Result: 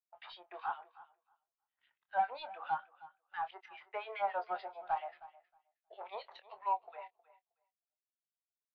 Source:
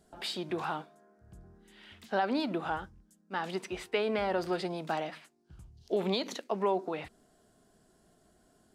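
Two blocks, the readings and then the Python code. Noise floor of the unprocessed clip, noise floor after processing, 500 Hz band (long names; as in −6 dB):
−67 dBFS, below −85 dBFS, −13.5 dB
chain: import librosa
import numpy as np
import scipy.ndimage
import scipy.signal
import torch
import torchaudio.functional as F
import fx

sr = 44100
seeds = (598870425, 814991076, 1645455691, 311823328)

y = fx.tracing_dist(x, sr, depth_ms=0.059)
y = scipy.signal.sosfilt(scipy.signal.butter(4, 740.0, 'highpass', fs=sr, output='sos'), y)
y = fx.harmonic_tremolo(y, sr, hz=7.3, depth_pct=100, crossover_hz=1800.0)
y = fx.leveller(y, sr, passes=3)
y = fx.air_absorb(y, sr, metres=280.0)
y = fx.doubler(y, sr, ms=25.0, db=-9.5)
y = fx.echo_feedback(y, sr, ms=315, feedback_pct=25, wet_db=-12.5)
y = fx.spectral_expand(y, sr, expansion=1.5)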